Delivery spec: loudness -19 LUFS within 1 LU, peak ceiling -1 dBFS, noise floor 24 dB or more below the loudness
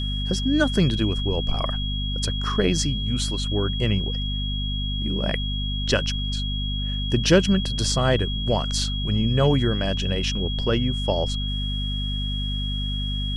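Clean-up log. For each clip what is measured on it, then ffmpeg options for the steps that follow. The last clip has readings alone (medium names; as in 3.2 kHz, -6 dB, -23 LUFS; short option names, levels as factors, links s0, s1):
hum 50 Hz; highest harmonic 250 Hz; hum level -25 dBFS; steady tone 3.3 kHz; tone level -30 dBFS; loudness -24.0 LUFS; peak level -3.5 dBFS; loudness target -19.0 LUFS
-> -af "bandreject=f=50:t=h:w=4,bandreject=f=100:t=h:w=4,bandreject=f=150:t=h:w=4,bandreject=f=200:t=h:w=4,bandreject=f=250:t=h:w=4"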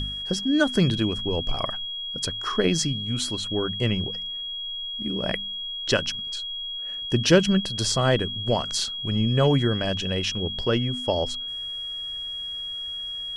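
hum not found; steady tone 3.3 kHz; tone level -30 dBFS
-> -af "bandreject=f=3300:w=30"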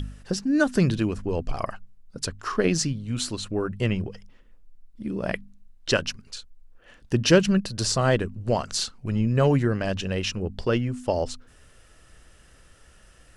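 steady tone not found; loudness -25.5 LUFS; peak level -4.5 dBFS; loudness target -19.0 LUFS
-> -af "volume=2.11,alimiter=limit=0.891:level=0:latency=1"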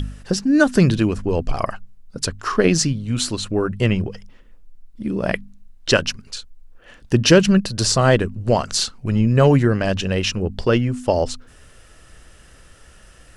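loudness -19.0 LUFS; peak level -1.0 dBFS; noise floor -48 dBFS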